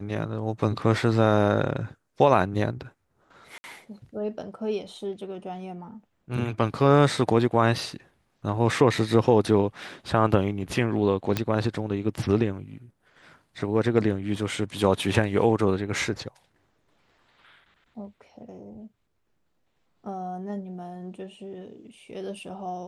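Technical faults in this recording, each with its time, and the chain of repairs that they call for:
3.58–3.64 gap 60 ms
11.37 pop -10 dBFS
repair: de-click; interpolate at 3.58, 60 ms

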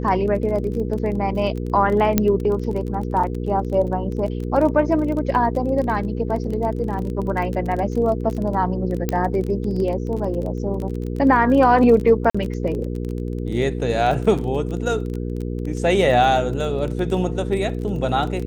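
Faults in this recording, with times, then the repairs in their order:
crackle 22/s -26 dBFS
hum 60 Hz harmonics 8 -26 dBFS
2.18 pop -2 dBFS
9.09 pop -8 dBFS
12.3–12.35 gap 45 ms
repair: de-click; de-hum 60 Hz, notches 8; interpolate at 12.3, 45 ms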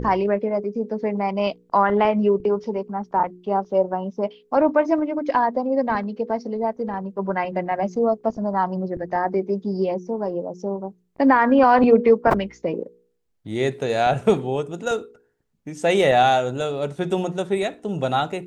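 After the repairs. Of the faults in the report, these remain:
none

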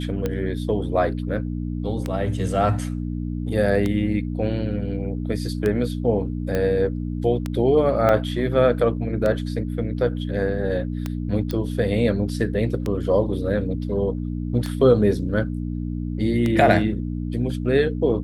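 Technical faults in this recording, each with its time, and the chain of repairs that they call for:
hum 60 Hz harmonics 5 -27 dBFS
tick 33 1/3 rpm -12 dBFS
6.55 pop -12 dBFS
8.09 gap 2.6 ms
11.51 pop -14 dBFS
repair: de-click; de-hum 60 Hz, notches 5; interpolate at 8.09, 2.6 ms

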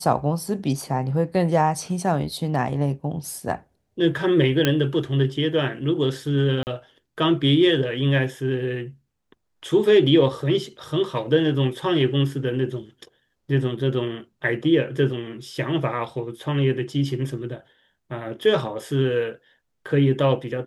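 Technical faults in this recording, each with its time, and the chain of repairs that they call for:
4.65 pop -5 dBFS
6.63–6.67 gap 39 ms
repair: de-click; interpolate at 6.63, 39 ms

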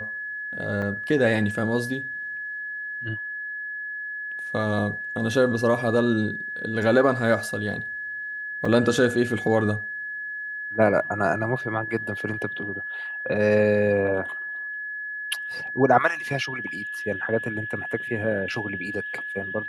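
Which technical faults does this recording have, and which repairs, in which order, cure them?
tone 1700 Hz -30 dBFS
0.82 gap 4.4 ms
8.65 gap 3.9 ms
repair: notch 1700 Hz, Q 30; interpolate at 0.82, 4.4 ms; interpolate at 8.65, 3.9 ms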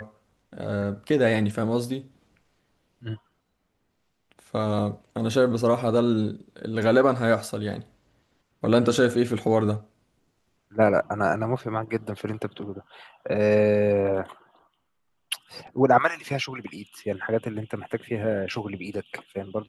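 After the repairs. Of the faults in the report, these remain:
none

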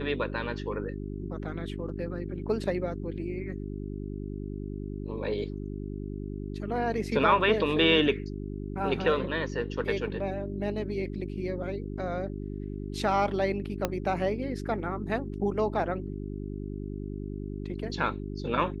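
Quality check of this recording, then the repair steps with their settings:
hum 50 Hz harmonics 8 -36 dBFS
13.85 pop -12 dBFS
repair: de-click; de-hum 50 Hz, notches 8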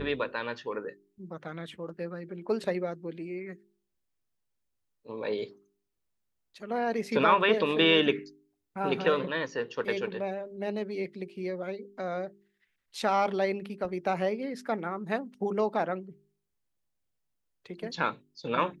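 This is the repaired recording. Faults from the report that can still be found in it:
13.85 pop

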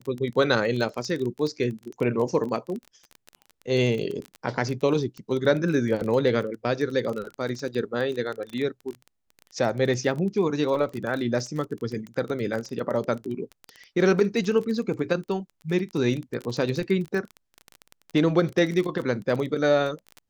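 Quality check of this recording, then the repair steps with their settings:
crackle 22/s -29 dBFS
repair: de-click

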